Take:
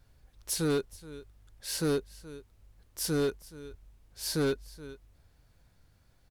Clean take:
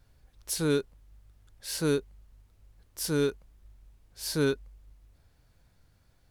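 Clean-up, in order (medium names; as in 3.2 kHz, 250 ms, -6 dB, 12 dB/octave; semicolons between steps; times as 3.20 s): clip repair -23.5 dBFS; 0.91–1.03 s: high-pass 140 Hz 24 dB/octave; 3.70–3.82 s: high-pass 140 Hz 24 dB/octave; inverse comb 423 ms -19.5 dB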